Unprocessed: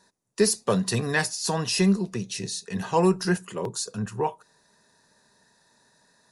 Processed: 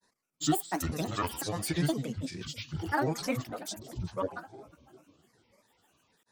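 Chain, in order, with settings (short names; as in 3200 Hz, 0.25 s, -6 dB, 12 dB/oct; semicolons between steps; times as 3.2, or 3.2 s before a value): split-band echo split 610 Hz, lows 0.312 s, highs 0.133 s, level -16 dB; grains, grains 20/s, pitch spread up and down by 12 st; gain -6.5 dB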